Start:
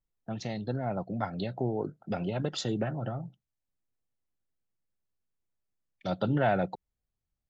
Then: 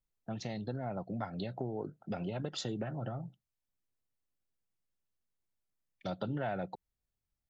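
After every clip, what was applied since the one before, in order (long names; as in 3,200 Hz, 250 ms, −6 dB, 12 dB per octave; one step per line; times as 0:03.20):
downward compressor 3 to 1, threshold −32 dBFS, peak gain reduction 8 dB
level −2.5 dB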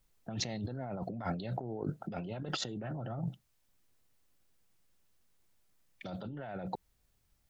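compressor whose output falls as the input rises −46 dBFS, ratio −1
level +7 dB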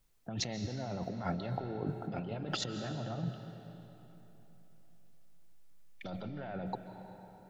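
convolution reverb RT60 3.6 s, pre-delay 105 ms, DRR 7.5 dB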